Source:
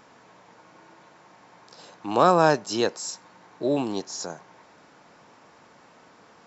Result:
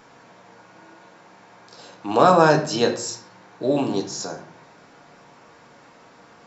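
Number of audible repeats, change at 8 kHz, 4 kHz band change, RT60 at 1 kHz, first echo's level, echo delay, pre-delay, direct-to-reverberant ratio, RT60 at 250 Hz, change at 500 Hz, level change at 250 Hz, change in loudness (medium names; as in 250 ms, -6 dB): no echo, no reading, +3.5 dB, 0.45 s, no echo, no echo, 4 ms, 2.5 dB, 0.80 s, +4.0 dB, +4.0 dB, +4.0 dB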